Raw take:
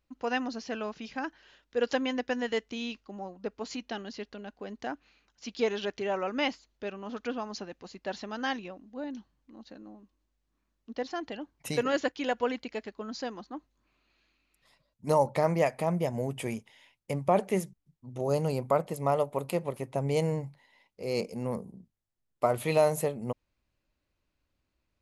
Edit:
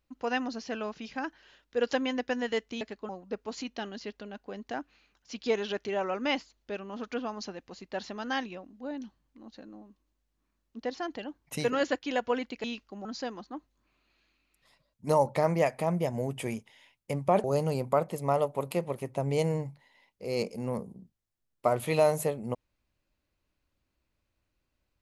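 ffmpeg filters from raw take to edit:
-filter_complex "[0:a]asplit=6[s0][s1][s2][s3][s4][s5];[s0]atrim=end=2.812[s6];[s1]atrim=start=12.768:end=13.052[s7];[s2]atrim=start=3.218:end=12.772[s8];[s3]atrim=start=2.808:end=3.222[s9];[s4]atrim=start=13.048:end=17.442[s10];[s5]atrim=start=18.218[s11];[s6][s7]acrossfade=d=0.004:c1=hsin:c2=hsin[s12];[s12][s8]acrossfade=d=0.004:c1=hsin:c2=hsin[s13];[s13][s9]acrossfade=d=0.004:c1=hsin:c2=hsin[s14];[s14][s10]acrossfade=d=0.004:c1=hsin:c2=hsin[s15];[s15][s11]acrossfade=d=0.004:c1=hsin:c2=hsin"

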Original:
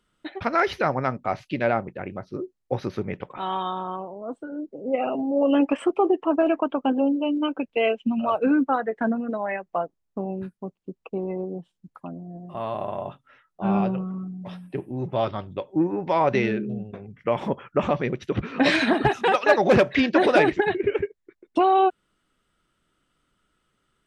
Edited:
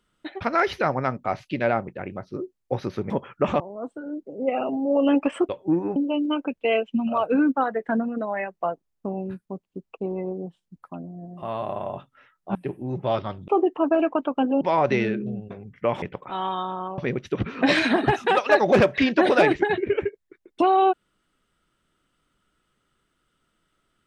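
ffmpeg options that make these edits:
-filter_complex "[0:a]asplit=10[s0][s1][s2][s3][s4][s5][s6][s7][s8][s9];[s0]atrim=end=3.102[s10];[s1]atrim=start=17.448:end=17.952[s11];[s2]atrim=start=4.058:end=5.952[s12];[s3]atrim=start=15.568:end=16.042[s13];[s4]atrim=start=7.078:end=13.672[s14];[s5]atrim=start=14.638:end=15.572[s15];[s6]atrim=start=5.948:end=7.082[s16];[s7]atrim=start=16.038:end=17.452[s17];[s8]atrim=start=3.098:end=4.062[s18];[s9]atrim=start=17.948[s19];[s10][s11]acrossfade=d=0.004:c1=hsin:c2=hsin[s20];[s20][s12]acrossfade=d=0.004:c1=hsin:c2=hsin[s21];[s21][s13]acrossfade=d=0.004:c1=hsin:c2=hsin[s22];[s22][s14]acrossfade=d=0.004:c1=hsin:c2=hsin[s23];[s23][s15]acrossfade=d=0.004:c1=hsin:c2=hsin[s24];[s24][s16]acrossfade=d=0.004:c1=hsin:c2=hsin[s25];[s25][s17]acrossfade=d=0.004:c1=hsin:c2=hsin[s26];[s26][s18]acrossfade=d=0.004:c1=hsin:c2=hsin[s27];[s27][s19]acrossfade=d=0.004:c1=hsin:c2=hsin"

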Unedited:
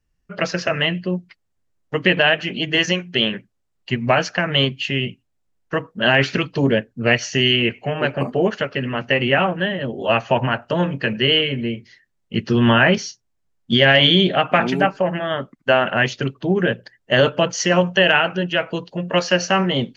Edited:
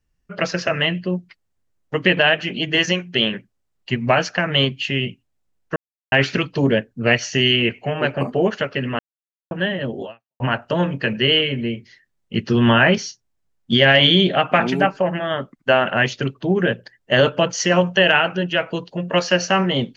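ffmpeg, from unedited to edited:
-filter_complex "[0:a]asplit=6[s0][s1][s2][s3][s4][s5];[s0]atrim=end=5.76,asetpts=PTS-STARTPTS,afade=t=out:st=5.756:d=0.004:c=hsin[s6];[s1]atrim=start=5.76:end=6.12,asetpts=PTS-STARTPTS,volume=0[s7];[s2]atrim=start=6.12:end=8.99,asetpts=PTS-STARTPTS,afade=t=in:d=0.004:c=hsin,afade=t=out:st=2.866:d=0.004:c=hsin[s8];[s3]atrim=start=8.99:end=9.51,asetpts=PTS-STARTPTS,volume=0[s9];[s4]atrim=start=9.51:end=10.4,asetpts=PTS-STARTPTS,afade=t=in:d=0.004:c=hsin,afade=t=out:st=0.52:d=0.37:c=exp[s10];[s5]atrim=start=10.4,asetpts=PTS-STARTPTS,afade=t=in:d=0.004:c=hsin[s11];[s6][s7][s8][s9][s10][s11]concat=n=6:v=0:a=1"

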